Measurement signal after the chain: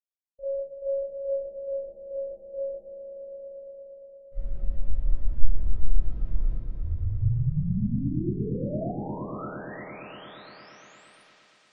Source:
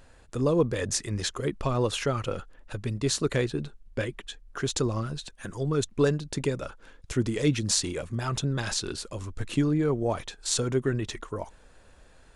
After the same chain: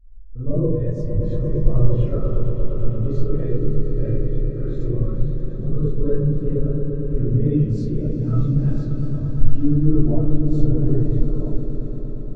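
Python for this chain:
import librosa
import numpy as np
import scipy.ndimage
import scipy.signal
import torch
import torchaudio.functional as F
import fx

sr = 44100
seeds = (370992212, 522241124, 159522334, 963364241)

p1 = fx.riaa(x, sr, side='playback')
p2 = fx.echo_swell(p1, sr, ms=116, loudest=5, wet_db=-10.0)
p3 = 10.0 ** (-14.0 / 20.0) * np.tanh(p2 / 10.0 ** (-14.0 / 20.0))
p4 = p2 + (p3 * 10.0 ** (-10.0 / 20.0))
p5 = fx.rev_freeverb(p4, sr, rt60_s=0.92, hf_ratio=0.55, predelay_ms=5, drr_db=-9.5)
p6 = fx.spectral_expand(p5, sr, expansion=1.5)
y = p6 * 10.0 ** (-9.0 / 20.0)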